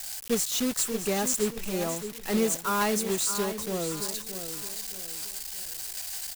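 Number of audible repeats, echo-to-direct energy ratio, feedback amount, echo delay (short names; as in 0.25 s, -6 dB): 3, -9.5 dB, 37%, 0.62 s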